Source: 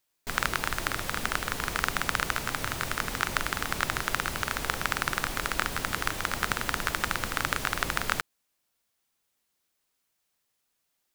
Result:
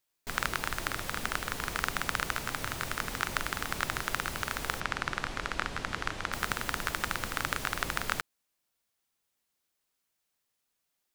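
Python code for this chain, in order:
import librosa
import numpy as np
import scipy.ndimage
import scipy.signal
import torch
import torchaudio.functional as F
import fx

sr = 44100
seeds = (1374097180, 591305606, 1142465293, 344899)

y = fx.air_absorb(x, sr, metres=78.0, at=(4.8, 6.33))
y = y * librosa.db_to_amplitude(-3.5)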